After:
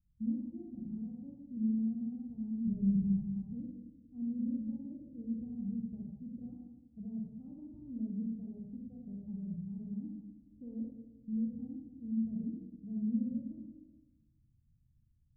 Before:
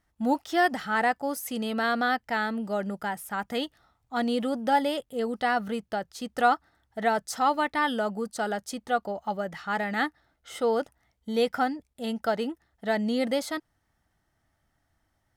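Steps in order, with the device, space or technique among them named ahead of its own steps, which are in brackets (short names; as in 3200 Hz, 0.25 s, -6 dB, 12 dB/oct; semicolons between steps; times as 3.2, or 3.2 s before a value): 2.67–3.25 tilt -3.5 dB/oct; club heard from the street (limiter -20 dBFS, peak gain reduction 10.5 dB; LPF 180 Hz 24 dB/oct; reverb RT60 1.1 s, pre-delay 35 ms, DRR -2 dB)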